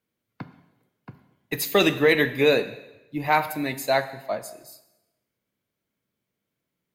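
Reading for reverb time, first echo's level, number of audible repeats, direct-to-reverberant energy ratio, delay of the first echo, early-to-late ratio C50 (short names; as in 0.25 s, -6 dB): 1.0 s, none, none, 10.5 dB, none, 13.0 dB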